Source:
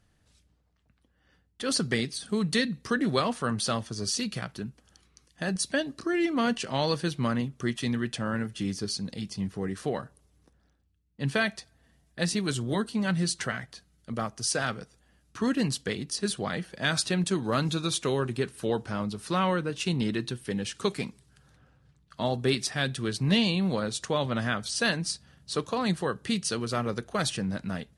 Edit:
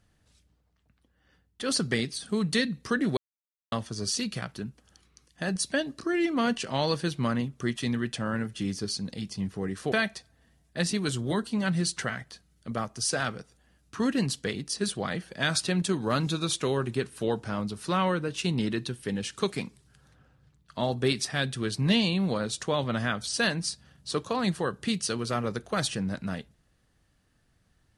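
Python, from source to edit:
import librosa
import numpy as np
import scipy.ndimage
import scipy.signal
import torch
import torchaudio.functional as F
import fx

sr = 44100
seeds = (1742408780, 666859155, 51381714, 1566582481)

y = fx.edit(x, sr, fx.silence(start_s=3.17, length_s=0.55),
    fx.cut(start_s=9.92, length_s=1.42), tone=tone)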